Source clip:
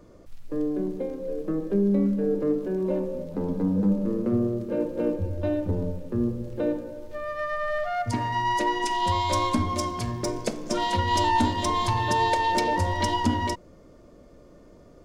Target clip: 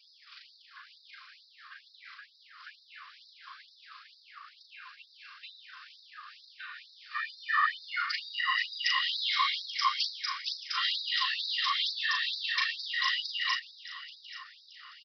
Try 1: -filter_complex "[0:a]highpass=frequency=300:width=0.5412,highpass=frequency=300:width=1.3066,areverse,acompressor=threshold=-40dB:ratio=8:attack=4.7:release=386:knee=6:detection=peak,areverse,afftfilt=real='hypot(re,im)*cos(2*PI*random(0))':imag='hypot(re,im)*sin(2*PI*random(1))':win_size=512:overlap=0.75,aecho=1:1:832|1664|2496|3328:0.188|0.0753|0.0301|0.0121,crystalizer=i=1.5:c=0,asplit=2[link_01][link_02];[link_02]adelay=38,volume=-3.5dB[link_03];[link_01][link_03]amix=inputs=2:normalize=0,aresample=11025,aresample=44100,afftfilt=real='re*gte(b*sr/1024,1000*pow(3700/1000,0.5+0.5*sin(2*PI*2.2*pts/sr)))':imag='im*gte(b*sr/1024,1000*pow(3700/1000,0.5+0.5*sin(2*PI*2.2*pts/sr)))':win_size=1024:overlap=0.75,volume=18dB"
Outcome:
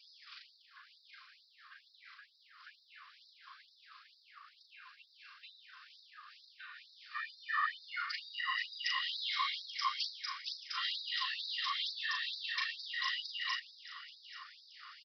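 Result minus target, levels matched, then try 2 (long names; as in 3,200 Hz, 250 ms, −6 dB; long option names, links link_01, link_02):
downward compressor: peak gain reduction +7 dB
-filter_complex "[0:a]highpass=frequency=300:width=0.5412,highpass=frequency=300:width=1.3066,areverse,acompressor=threshold=-32dB:ratio=8:attack=4.7:release=386:knee=6:detection=peak,areverse,afftfilt=real='hypot(re,im)*cos(2*PI*random(0))':imag='hypot(re,im)*sin(2*PI*random(1))':win_size=512:overlap=0.75,aecho=1:1:832|1664|2496|3328:0.188|0.0753|0.0301|0.0121,crystalizer=i=1.5:c=0,asplit=2[link_01][link_02];[link_02]adelay=38,volume=-3.5dB[link_03];[link_01][link_03]amix=inputs=2:normalize=0,aresample=11025,aresample=44100,afftfilt=real='re*gte(b*sr/1024,1000*pow(3700/1000,0.5+0.5*sin(2*PI*2.2*pts/sr)))':imag='im*gte(b*sr/1024,1000*pow(3700/1000,0.5+0.5*sin(2*PI*2.2*pts/sr)))':win_size=1024:overlap=0.75,volume=18dB"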